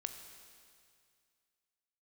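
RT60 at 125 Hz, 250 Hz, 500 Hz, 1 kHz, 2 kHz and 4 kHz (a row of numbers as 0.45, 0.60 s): 2.4, 2.2, 2.2, 2.2, 2.2, 2.2 s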